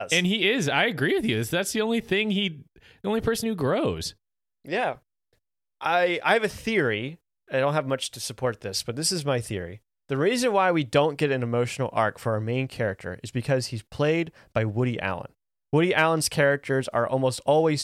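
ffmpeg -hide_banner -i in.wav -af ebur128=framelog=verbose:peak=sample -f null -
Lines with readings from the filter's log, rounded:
Integrated loudness:
  I:         -25.1 LUFS
  Threshold: -35.4 LUFS
Loudness range:
  LRA:         3.3 LU
  Threshold: -46.1 LUFS
  LRA low:   -28.0 LUFS
  LRA high:  -24.7 LUFS
Sample peak:
  Peak:       -7.2 dBFS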